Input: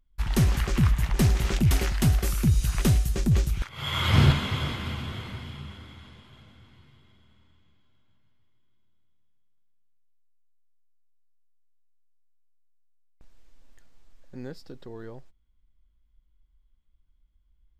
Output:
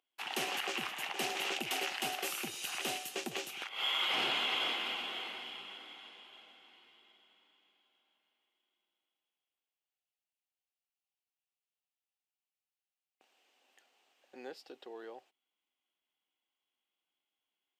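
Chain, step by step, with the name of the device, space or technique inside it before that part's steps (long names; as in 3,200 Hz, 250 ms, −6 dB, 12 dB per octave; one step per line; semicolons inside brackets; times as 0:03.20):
laptop speaker (high-pass filter 340 Hz 24 dB per octave; parametric band 770 Hz +10.5 dB 0.22 octaves; parametric band 2,800 Hz +11.5 dB 0.57 octaves; brickwall limiter −19.5 dBFS, peak gain reduction 8 dB)
level −4.5 dB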